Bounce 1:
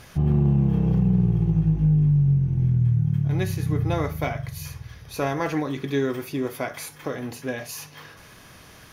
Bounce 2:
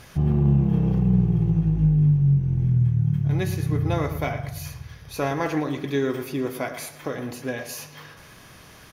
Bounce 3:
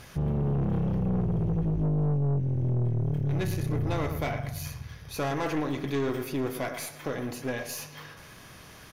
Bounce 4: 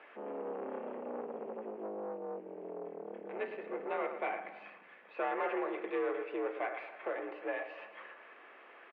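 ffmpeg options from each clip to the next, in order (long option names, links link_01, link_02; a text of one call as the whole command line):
ffmpeg -i in.wav -filter_complex "[0:a]asplit=2[link_01][link_02];[link_02]adelay=113,lowpass=frequency=3800:poles=1,volume=-11.5dB,asplit=2[link_03][link_04];[link_04]adelay=113,lowpass=frequency=3800:poles=1,volume=0.42,asplit=2[link_05][link_06];[link_06]adelay=113,lowpass=frequency=3800:poles=1,volume=0.42,asplit=2[link_07][link_08];[link_08]adelay=113,lowpass=frequency=3800:poles=1,volume=0.42[link_09];[link_01][link_03][link_05][link_07][link_09]amix=inputs=5:normalize=0" out.wav
ffmpeg -i in.wav -af "aeval=exprs='(tanh(15.8*val(0)+0.4)-tanh(0.4))/15.8':channel_layout=same" out.wav
ffmpeg -i in.wav -filter_complex "[0:a]asplit=2[link_01][link_02];[link_02]adelay=280,highpass=300,lowpass=3400,asoftclip=type=hard:threshold=-30dB,volume=-16dB[link_03];[link_01][link_03]amix=inputs=2:normalize=0,highpass=frequency=310:width_type=q:width=0.5412,highpass=frequency=310:width_type=q:width=1.307,lowpass=frequency=2600:width_type=q:width=0.5176,lowpass=frequency=2600:width_type=q:width=0.7071,lowpass=frequency=2600:width_type=q:width=1.932,afreqshift=57,volume=-3.5dB" out.wav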